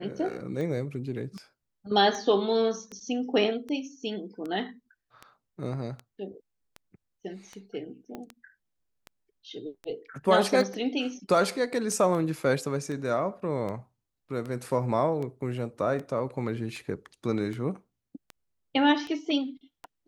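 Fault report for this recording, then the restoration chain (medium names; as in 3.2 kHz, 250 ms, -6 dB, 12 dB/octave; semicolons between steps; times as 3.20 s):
tick 78 rpm -25 dBFS
8.15 s: pop -25 dBFS
11.92 s: dropout 2.9 ms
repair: de-click; interpolate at 11.92 s, 2.9 ms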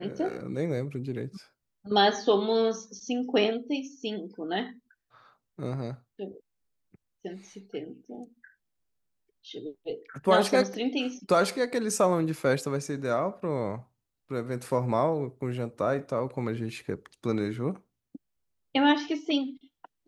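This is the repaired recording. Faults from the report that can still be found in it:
8.15 s: pop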